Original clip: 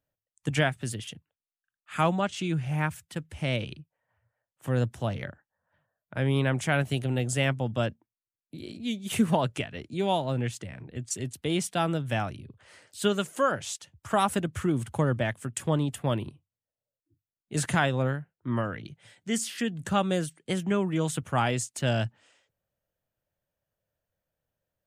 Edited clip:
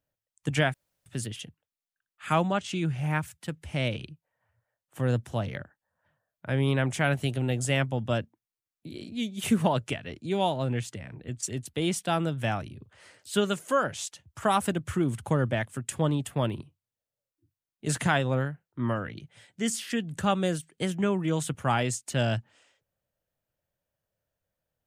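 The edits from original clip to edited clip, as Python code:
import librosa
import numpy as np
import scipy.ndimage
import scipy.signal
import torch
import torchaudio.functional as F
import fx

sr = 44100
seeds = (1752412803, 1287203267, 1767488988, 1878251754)

y = fx.edit(x, sr, fx.insert_room_tone(at_s=0.74, length_s=0.32), tone=tone)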